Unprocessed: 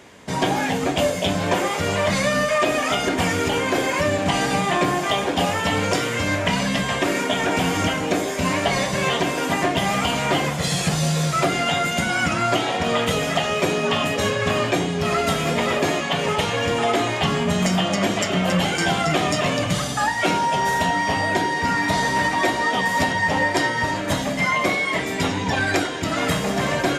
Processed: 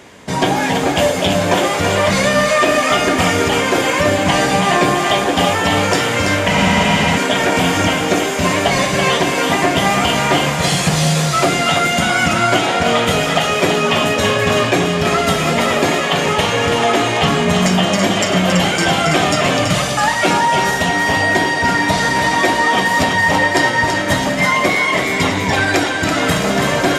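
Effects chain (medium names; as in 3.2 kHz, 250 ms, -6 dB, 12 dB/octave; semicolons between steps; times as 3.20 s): on a send: thinning echo 331 ms, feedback 51%, high-pass 420 Hz, level -5 dB; on the sum: spectral freeze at 6.49 s, 0.68 s; trim +5.5 dB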